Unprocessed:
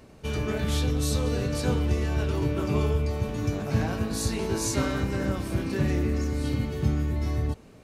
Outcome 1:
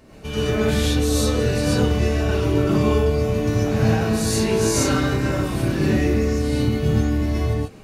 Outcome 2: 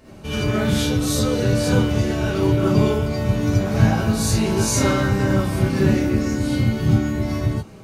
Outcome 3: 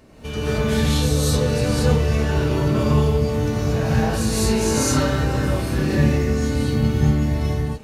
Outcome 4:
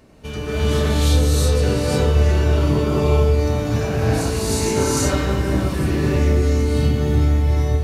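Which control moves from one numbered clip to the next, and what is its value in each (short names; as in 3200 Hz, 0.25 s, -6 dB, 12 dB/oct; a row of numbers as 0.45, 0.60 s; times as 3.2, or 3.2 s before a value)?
non-linear reverb, gate: 0.16, 0.1, 0.25, 0.39 s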